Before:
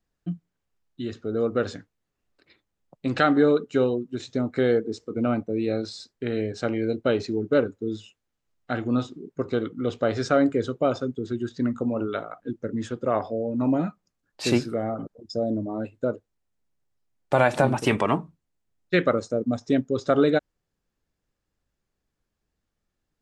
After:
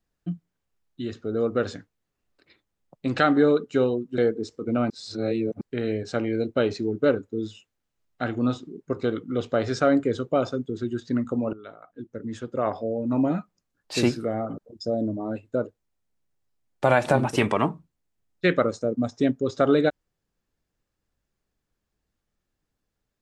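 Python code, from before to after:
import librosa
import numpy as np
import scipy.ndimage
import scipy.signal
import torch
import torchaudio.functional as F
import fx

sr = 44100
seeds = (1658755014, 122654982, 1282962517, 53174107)

y = fx.edit(x, sr, fx.cut(start_s=4.18, length_s=0.49),
    fx.reverse_span(start_s=5.39, length_s=0.71),
    fx.fade_in_from(start_s=12.02, length_s=1.35, floor_db=-17.5), tone=tone)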